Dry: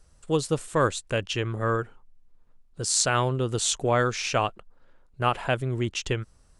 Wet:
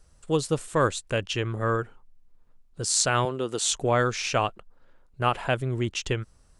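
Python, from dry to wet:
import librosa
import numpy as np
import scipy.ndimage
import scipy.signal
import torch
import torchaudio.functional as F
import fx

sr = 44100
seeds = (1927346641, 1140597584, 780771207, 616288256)

y = fx.highpass(x, sr, hz=240.0, slope=12, at=(3.25, 3.71))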